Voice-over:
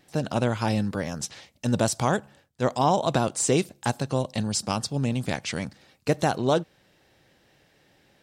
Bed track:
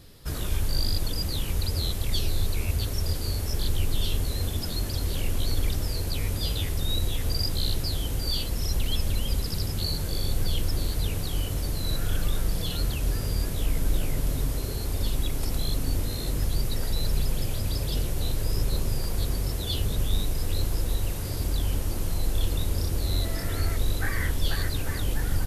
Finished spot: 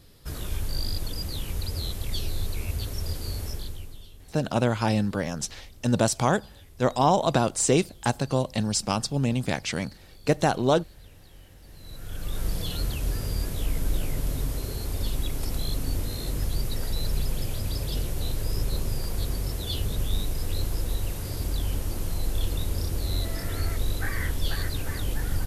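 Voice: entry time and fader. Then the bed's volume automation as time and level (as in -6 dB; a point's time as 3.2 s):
4.20 s, +1.0 dB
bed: 3.47 s -3.5 dB
4.12 s -22.5 dB
11.59 s -22.5 dB
12.46 s -1.5 dB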